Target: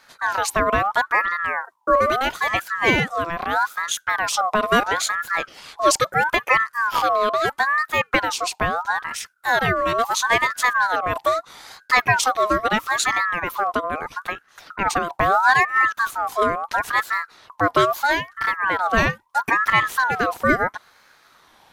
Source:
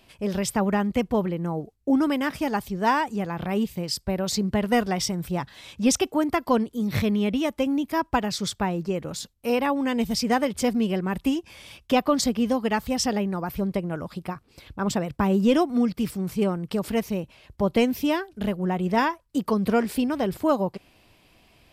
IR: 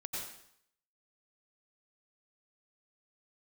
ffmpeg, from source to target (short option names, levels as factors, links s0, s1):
-af "aeval=exprs='val(0)*sin(2*PI*1200*n/s+1200*0.3/0.76*sin(2*PI*0.76*n/s))':c=same,volume=2.11"